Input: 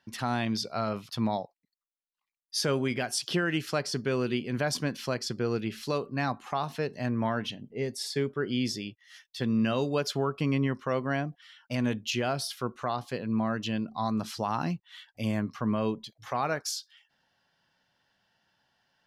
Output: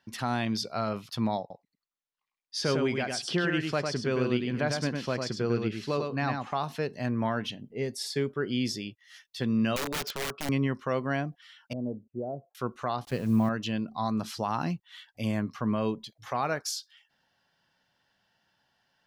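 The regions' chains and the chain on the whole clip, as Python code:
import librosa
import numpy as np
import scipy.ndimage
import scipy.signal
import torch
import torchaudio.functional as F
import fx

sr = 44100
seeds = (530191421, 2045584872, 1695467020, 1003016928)

y = fx.chain(x, sr, fx.air_absorb(metres=66.0),
    fx.echo_single(ms=102, db=-4.5), at=(1.4, 6.55))
y = fx.chain(y, sr, fx.highpass(hz=260.0, slope=6),
    fx.air_absorb(metres=80.0),
    fx.overflow_wrap(gain_db=26.5), at=(9.76, 10.49))
y = fx.chain(y, sr, fx.steep_lowpass(hz=660.0, slope=36),
    fx.tilt_eq(slope=2.5), at=(11.73, 12.55))
y = fx.chain(y, sr, fx.delta_hold(step_db=-47.0),
    fx.low_shelf(hz=190.0, db=10.0), at=(13.05, 13.49))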